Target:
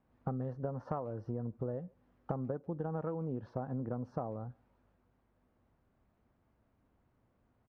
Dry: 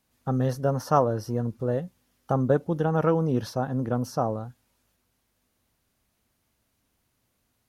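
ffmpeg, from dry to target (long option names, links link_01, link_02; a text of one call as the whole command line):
ffmpeg -i in.wav -filter_complex "[0:a]lowpass=1200,acompressor=threshold=-36dB:ratio=20,asplit=2[link_01][link_02];[link_02]adelay=140,highpass=300,lowpass=3400,asoftclip=type=hard:threshold=-35.5dB,volume=-27dB[link_03];[link_01][link_03]amix=inputs=2:normalize=0,volume=2.5dB" out.wav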